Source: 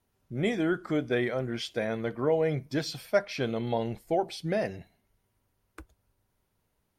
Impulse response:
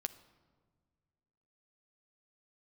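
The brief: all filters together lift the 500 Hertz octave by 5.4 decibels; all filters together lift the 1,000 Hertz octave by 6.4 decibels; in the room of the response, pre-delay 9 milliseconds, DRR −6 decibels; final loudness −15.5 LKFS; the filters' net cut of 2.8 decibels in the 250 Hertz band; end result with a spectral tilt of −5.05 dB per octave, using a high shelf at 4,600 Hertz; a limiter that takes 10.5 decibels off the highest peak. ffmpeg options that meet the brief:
-filter_complex "[0:a]equalizer=frequency=250:width_type=o:gain=-8,equalizer=frequency=500:width_type=o:gain=6.5,equalizer=frequency=1000:width_type=o:gain=6.5,highshelf=frequency=4600:gain=8,alimiter=limit=-16dB:level=0:latency=1,asplit=2[link_01][link_02];[1:a]atrim=start_sample=2205,adelay=9[link_03];[link_02][link_03]afir=irnorm=-1:irlink=0,volume=7.5dB[link_04];[link_01][link_04]amix=inputs=2:normalize=0,volume=5.5dB"

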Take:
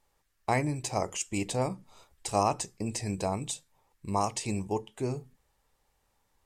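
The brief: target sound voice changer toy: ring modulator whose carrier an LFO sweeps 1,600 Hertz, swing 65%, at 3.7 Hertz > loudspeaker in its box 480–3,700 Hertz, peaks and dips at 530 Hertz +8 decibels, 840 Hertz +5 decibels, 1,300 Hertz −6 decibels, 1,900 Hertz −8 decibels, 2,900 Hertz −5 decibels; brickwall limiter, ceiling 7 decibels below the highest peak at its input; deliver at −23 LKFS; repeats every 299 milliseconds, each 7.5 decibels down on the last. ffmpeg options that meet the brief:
ffmpeg -i in.wav -af "alimiter=limit=-19.5dB:level=0:latency=1,aecho=1:1:299|598|897|1196|1495:0.422|0.177|0.0744|0.0312|0.0131,aeval=exprs='val(0)*sin(2*PI*1600*n/s+1600*0.65/3.7*sin(2*PI*3.7*n/s))':channel_layout=same,highpass=480,equalizer=frequency=530:width_type=q:width=4:gain=8,equalizer=frequency=840:width_type=q:width=4:gain=5,equalizer=frequency=1300:width_type=q:width=4:gain=-6,equalizer=frequency=1900:width_type=q:width=4:gain=-8,equalizer=frequency=2900:width_type=q:width=4:gain=-5,lowpass=frequency=3700:width=0.5412,lowpass=frequency=3700:width=1.3066,volume=15dB" out.wav

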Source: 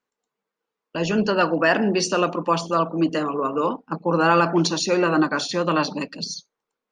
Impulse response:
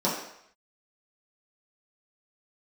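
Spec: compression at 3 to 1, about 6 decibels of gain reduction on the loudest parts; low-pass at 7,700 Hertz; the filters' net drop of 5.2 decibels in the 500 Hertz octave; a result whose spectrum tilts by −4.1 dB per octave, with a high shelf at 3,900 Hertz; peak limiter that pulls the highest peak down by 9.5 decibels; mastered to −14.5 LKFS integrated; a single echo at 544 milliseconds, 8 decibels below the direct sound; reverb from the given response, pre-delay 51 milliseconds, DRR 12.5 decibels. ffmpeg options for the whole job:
-filter_complex "[0:a]lowpass=7700,equalizer=frequency=500:width_type=o:gain=-7,highshelf=frequency=3900:gain=7.5,acompressor=threshold=-22dB:ratio=3,alimiter=limit=-19.5dB:level=0:latency=1,aecho=1:1:544:0.398,asplit=2[link_01][link_02];[1:a]atrim=start_sample=2205,adelay=51[link_03];[link_02][link_03]afir=irnorm=-1:irlink=0,volume=-25dB[link_04];[link_01][link_04]amix=inputs=2:normalize=0,volume=14dB"

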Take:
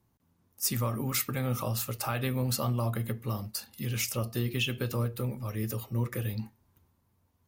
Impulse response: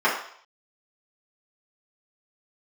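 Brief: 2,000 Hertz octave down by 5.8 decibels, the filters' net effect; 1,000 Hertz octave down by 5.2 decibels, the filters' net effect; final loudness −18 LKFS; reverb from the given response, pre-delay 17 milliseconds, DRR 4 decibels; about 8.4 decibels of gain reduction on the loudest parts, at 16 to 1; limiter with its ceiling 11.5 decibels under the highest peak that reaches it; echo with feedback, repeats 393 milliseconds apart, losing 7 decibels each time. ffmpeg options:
-filter_complex "[0:a]equalizer=frequency=1000:width_type=o:gain=-4.5,equalizer=frequency=2000:width_type=o:gain=-7,acompressor=threshold=-34dB:ratio=16,alimiter=level_in=9.5dB:limit=-24dB:level=0:latency=1,volume=-9.5dB,aecho=1:1:393|786|1179|1572|1965:0.447|0.201|0.0905|0.0407|0.0183,asplit=2[link_01][link_02];[1:a]atrim=start_sample=2205,adelay=17[link_03];[link_02][link_03]afir=irnorm=-1:irlink=0,volume=-22.5dB[link_04];[link_01][link_04]amix=inputs=2:normalize=0,volume=23dB"

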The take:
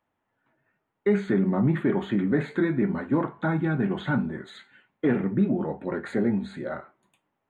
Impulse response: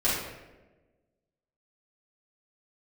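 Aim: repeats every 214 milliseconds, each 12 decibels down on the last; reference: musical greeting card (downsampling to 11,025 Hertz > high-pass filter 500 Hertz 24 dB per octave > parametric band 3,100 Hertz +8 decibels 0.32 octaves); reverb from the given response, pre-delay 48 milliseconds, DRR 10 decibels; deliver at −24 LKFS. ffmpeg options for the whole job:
-filter_complex "[0:a]aecho=1:1:214|428|642:0.251|0.0628|0.0157,asplit=2[link_01][link_02];[1:a]atrim=start_sample=2205,adelay=48[link_03];[link_02][link_03]afir=irnorm=-1:irlink=0,volume=-22.5dB[link_04];[link_01][link_04]amix=inputs=2:normalize=0,aresample=11025,aresample=44100,highpass=frequency=500:width=0.5412,highpass=frequency=500:width=1.3066,equalizer=frequency=3100:width_type=o:width=0.32:gain=8,volume=11dB"

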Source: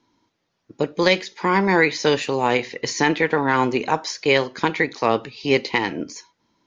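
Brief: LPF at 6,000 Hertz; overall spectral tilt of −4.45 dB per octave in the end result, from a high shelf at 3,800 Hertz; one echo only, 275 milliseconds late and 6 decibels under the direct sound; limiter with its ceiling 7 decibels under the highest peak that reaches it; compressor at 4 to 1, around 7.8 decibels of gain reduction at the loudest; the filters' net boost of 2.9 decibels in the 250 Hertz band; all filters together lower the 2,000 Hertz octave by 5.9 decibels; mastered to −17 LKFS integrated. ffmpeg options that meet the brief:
ffmpeg -i in.wav -af "lowpass=6000,equalizer=frequency=250:width_type=o:gain=4,equalizer=frequency=2000:width_type=o:gain=-8,highshelf=frequency=3800:gain=4,acompressor=threshold=-21dB:ratio=4,alimiter=limit=-15dB:level=0:latency=1,aecho=1:1:275:0.501,volume=9.5dB" out.wav

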